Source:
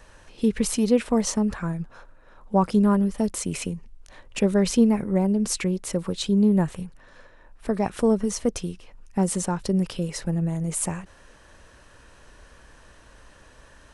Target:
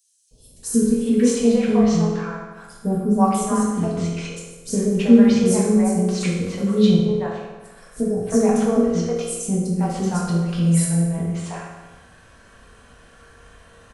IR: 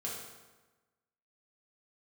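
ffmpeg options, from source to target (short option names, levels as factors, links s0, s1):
-filter_complex "[0:a]acrossover=split=490|5500[s0][s1][s2];[s0]adelay=310[s3];[s1]adelay=630[s4];[s3][s4][s2]amix=inputs=3:normalize=0[s5];[1:a]atrim=start_sample=2205[s6];[s5][s6]afir=irnorm=-1:irlink=0,volume=1.41"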